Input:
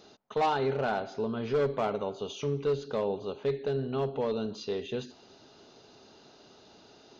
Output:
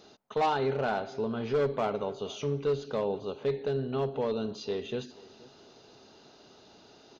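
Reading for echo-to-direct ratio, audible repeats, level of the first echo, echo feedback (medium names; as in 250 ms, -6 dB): -21.5 dB, 2, -22.0 dB, 29%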